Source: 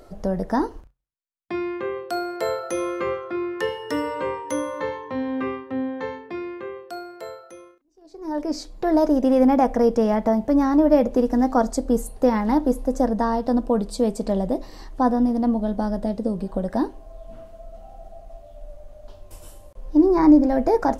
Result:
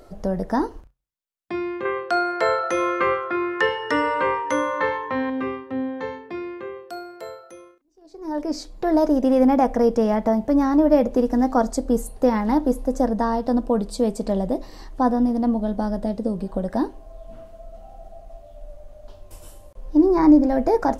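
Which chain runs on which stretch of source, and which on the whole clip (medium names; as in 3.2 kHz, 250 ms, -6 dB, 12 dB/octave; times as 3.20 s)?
1.85–5.30 s: low-pass 7.1 kHz + peaking EQ 1.5 kHz +10.5 dB 2 oct
whole clip: none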